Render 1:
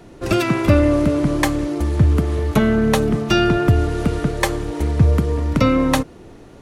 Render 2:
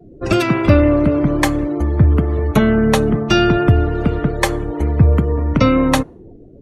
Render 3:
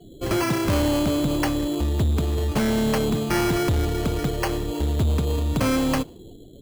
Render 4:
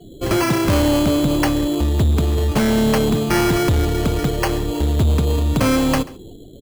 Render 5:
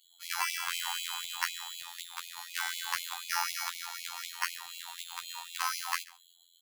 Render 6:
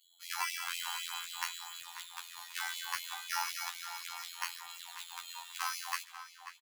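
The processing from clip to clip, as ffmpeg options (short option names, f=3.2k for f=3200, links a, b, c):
-af "afftdn=nr=32:nf=-38,volume=2.5dB"
-af "acrusher=samples=12:mix=1:aa=0.000001,asoftclip=type=tanh:threshold=-14dB,volume=-3.5dB"
-af "aecho=1:1:136:0.0891,volume=5dB"
-af "afftfilt=real='hypot(re,im)*cos(PI*b)':imag='0':win_size=2048:overlap=0.75,afftfilt=real='re*gte(b*sr/1024,710*pow(2100/710,0.5+0.5*sin(2*PI*4*pts/sr)))':imag='im*gte(b*sr/1024,710*pow(2100/710,0.5+0.5*sin(2*PI*4*pts/sr)))':win_size=1024:overlap=0.75,volume=-4dB"
-filter_complex "[0:a]flanger=delay=8.9:depth=3:regen=-35:speed=0.34:shape=sinusoidal,asplit=2[a][b];[b]adelay=539,lowpass=f=3.2k:p=1,volume=-10dB,asplit=2[c][d];[d]adelay=539,lowpass=f=3.2k:p=1,volume=0.34,asplit=2[e][f];[f]adelay=539,lowpass=f=3.2k:p=1,volume=0.34,asplit=2[g][h];[h]adelay=539,lowpass=f=3.2k:p=1,volume=0.34[i];[a][c][e][g][i]amix=inputs=5:normalize=0"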